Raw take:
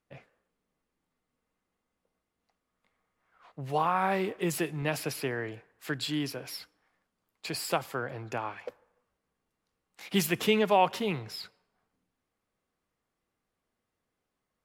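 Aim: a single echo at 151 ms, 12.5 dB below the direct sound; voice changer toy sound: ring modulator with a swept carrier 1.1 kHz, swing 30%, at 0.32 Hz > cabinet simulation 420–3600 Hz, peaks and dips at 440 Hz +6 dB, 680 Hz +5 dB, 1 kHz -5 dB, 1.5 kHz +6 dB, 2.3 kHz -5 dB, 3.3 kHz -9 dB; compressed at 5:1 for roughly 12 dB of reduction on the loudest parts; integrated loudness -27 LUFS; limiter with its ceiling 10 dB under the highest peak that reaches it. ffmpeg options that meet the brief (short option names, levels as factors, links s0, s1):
-af "acompressor=threshold=0.0224:ratio=5,alimiter=level_in=2.11:limit=0.0631:level=0:latency=1,volume=0.473,aecho=1:1:151:0.237,aeval=exprs='val(0)*sin(2*PI*1100*n/s+1100*0.3/0.32*sin(2*PI*0.32*n/s))':c=same,highpass=420,equalizer=f=440:t=q:w=4:g=6,equalizer=f=680:t=q:w=4:g=5,equalizer=f=1000:t=q:w=4:g=-5,equalizer=f=1500:t=q:w=4:g=6,equalizer=f=2300:t=q:w=4:g=-5,equalizer=f=3300:t=q:w=4:g=-9,lowpass=f=3600:w=0.5412,lowpass=f=3600:w=1.3066,volume=6.68"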